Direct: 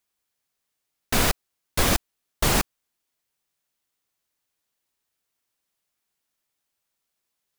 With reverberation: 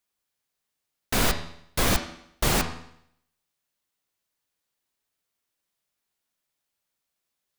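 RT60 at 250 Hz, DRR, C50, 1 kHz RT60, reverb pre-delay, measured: 0.70 s, 6.0 dB, 9.5 dB, 0.70 s, 12 ms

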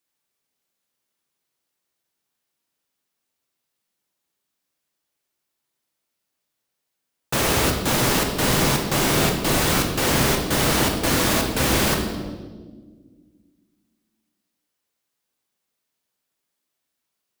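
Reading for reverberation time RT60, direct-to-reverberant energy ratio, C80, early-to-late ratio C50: 1.5 s, 1.5 dB, 7.0 dB, 5.0 dB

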